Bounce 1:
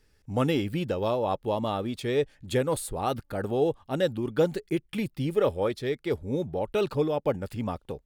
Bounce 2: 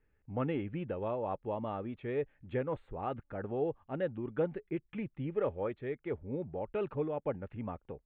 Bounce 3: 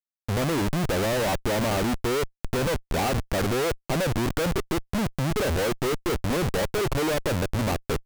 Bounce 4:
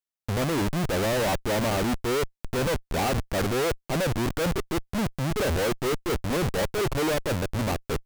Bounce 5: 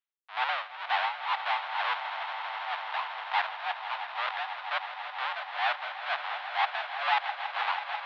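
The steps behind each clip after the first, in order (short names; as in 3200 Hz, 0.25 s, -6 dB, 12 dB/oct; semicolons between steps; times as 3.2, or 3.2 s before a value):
inverse Chebyshev low-pass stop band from 4800 Hz, stop band 40 dB; gain -8.5 dB
dynamic EQ 650 Hz, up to +3 dB, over -48 dBFS, Q 1.1; in parallel at -1.5 dB: limiter -29.5 dBFS, peak gain reduction 10 dB; on the sum: Schmitt trigger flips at -38.5 dBFS; gain +7.5 dB
limiter -22.5 dBFS, peak gain reduction 4.5 dB
tremolo 2.1 Hz, depth 96%; mistuned SSB +250 Hz 590–3500 Hz; swelling echo 0.163 s, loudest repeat 5, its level -13 dB; gain +4 dB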